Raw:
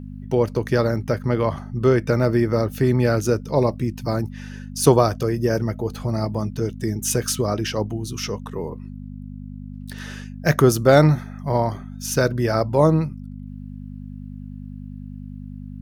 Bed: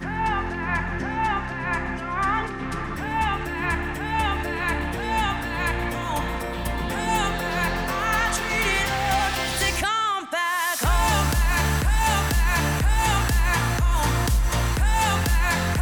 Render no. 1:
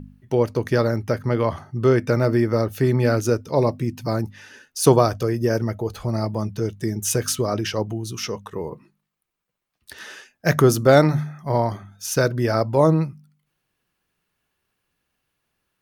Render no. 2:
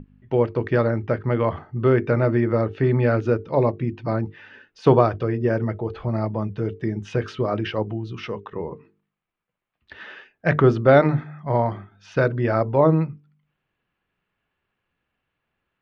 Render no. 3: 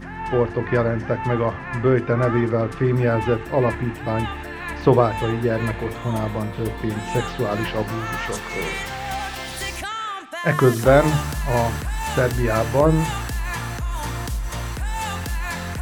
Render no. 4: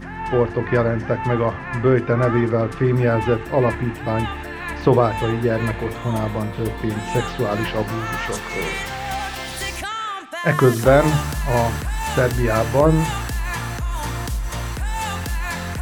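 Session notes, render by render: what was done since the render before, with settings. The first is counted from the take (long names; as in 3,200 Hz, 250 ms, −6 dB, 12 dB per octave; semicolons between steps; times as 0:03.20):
hum removal 50 Hz, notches 5
low-pass filter 3,100 Hz 24 dB per octave; mains-hum notches 50/100/150/200/250/300/350/400/450 Hz
mix in bed −5.5 dB
level +1.5 dB; brickwall limiter −3 dBFS, peak gain reduction 2.5 dB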